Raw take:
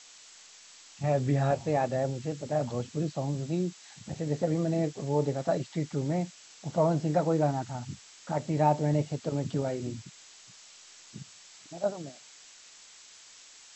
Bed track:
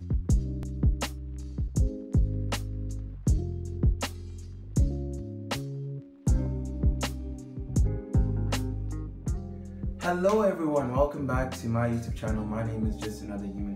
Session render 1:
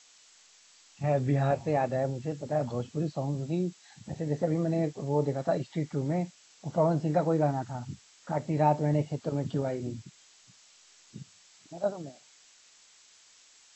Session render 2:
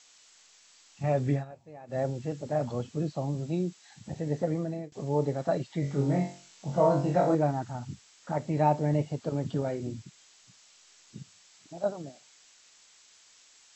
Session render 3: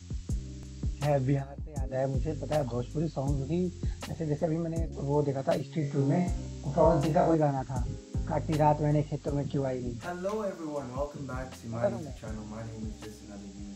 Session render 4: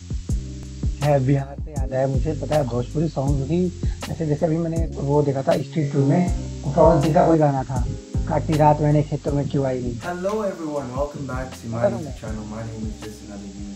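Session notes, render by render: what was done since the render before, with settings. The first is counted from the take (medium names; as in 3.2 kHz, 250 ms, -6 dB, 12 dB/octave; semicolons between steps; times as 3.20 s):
noise print and reduce 6 dB
1.33–1.99 s: dip -20 dB, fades 0.12 s; 4.28–4.92 s: fade out equal-power, to -23 dB; 5.80–7.35 s: flutter echo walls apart 3.7 m, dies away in 0.41 s
add bed track -9 dB
trim +9 dB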